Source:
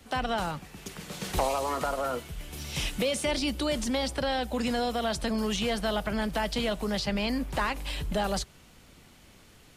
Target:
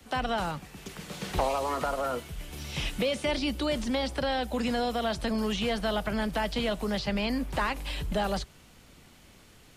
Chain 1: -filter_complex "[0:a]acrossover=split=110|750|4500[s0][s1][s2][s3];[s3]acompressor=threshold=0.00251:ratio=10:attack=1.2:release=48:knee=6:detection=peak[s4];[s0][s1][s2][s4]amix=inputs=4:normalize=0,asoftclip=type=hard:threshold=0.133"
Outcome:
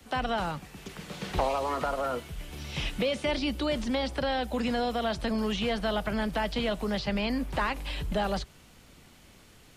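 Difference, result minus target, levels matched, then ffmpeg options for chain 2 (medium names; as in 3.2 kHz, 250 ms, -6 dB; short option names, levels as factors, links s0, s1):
compression: peak gain reduction +6.5 dB
-filter_complex "[0:a]acrossover=split=110|750|4500[s0][s1][s2][s3];[s3]acompressor=threshold=0.00562:ratio=10:attack=1.2:release=48:knee=6:detection=peak[s4];[s0][s1][s2][s4]amix=inputs=4:normalize=0,asoftclip=type=hard:threshold=0.133"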